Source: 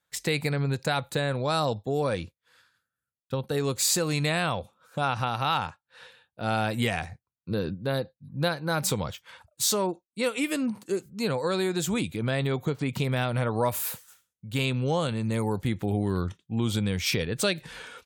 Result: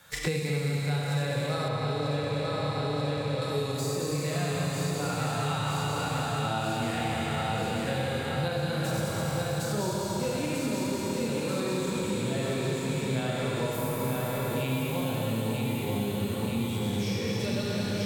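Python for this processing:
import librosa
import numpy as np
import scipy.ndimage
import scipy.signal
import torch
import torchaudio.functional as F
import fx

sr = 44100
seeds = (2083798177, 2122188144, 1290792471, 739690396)

y = fx.reverse_delay_fb(x, sr, ms=105, feedback_pct=68, wet_db=-4)
y = fx.hpss(y, sr, part='percussive', gain_db=-15)
y = fx.echo_feedback(y, sr, ms=938, feedback_pct=54, wet_db=-4.5)
y = fx.rev_schroeder(y, sr, rt60_s=3.4, comb_ms=27, drr_db=-3.0)
y = fx.rider(y, sr, range_db=5, speed_s=0.5)
y = fx.high_shelf(y, sr, hz=4300.0, db=-11.5, at=(1.68, 3.42))
y = fx.band_squash(y, sr, depth_pct=100)
y = y * librosa.db_to_amplitude(-7.5)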